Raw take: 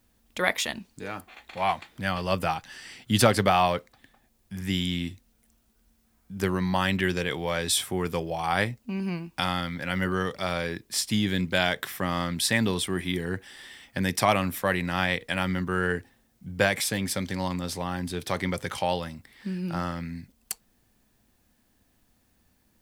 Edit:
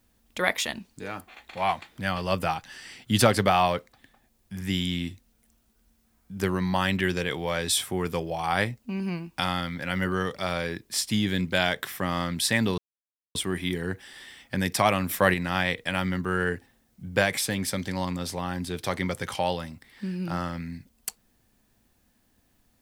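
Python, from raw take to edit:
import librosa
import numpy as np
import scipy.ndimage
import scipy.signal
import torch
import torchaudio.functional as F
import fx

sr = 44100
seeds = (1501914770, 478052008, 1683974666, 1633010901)

y = fx.edit(x, sr, fx.insert_silence(at_s=12.78, length_s=0.57),
    fx.clip_gain(start_s=14.52, length_s=0.25, db=4.5), tone=tone)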